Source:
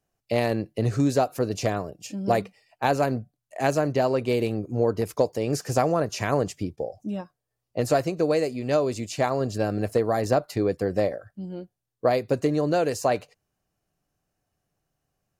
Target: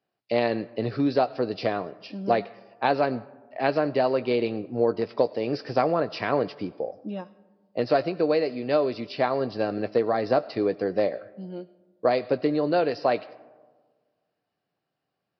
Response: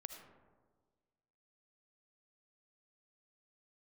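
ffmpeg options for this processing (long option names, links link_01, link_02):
-filter_complex "[0:a]highpass=200,asplit=2[link_01][link_02];[link_02]tiltshelf=frequency=1200:gain=-4.5[link_03];[1:a]atrim=start_sample=2205,adelay=17[link_04];[link_03][link_04]afir=irnorm=-1:irlink=0,volume=-8.5dB[link_05];[link_01][link_05]amix=inputs=2:normalize=0,aresample=11025,aresample=44100"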